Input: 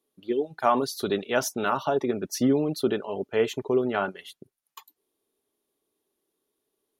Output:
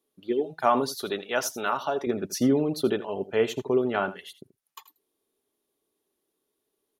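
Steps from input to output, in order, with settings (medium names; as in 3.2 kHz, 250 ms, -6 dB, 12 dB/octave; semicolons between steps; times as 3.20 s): 0.95–2.07 s: bass shelf 330 Hz -11 dB; on a send: delay 82 ms -16 dB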